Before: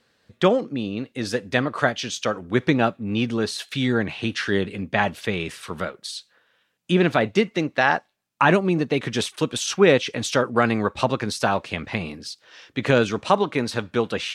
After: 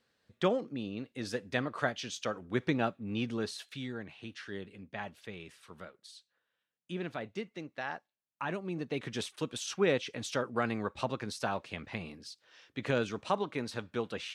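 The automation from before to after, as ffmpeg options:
ffmpeg -i in.wav -af "volume=-4dB,afade=type=out:start_time=3.41:duration=0.52:silence=0.375837,afade=type=in:start_time=8.55:duration=0.45:silence=0.446684" out.wav

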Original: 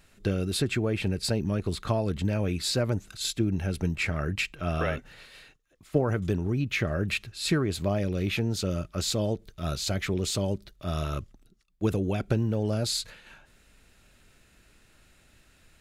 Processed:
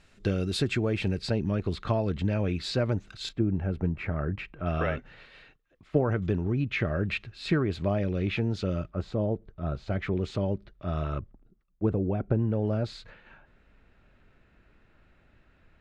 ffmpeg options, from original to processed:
ffmpeg -i in.wav -af "asetnsamples=nb_out_samples=441:pad=0,asendcmd='1.19 lowpass f 3700;3.29 lowpass f 1400;4.66 lowpass f 2900;8.9 lowpass f 1200;9.9 lowpass f 2000;11.19 lowpass f 1100;12.39 lowpass f 1900',lowpass=6400" out.wav

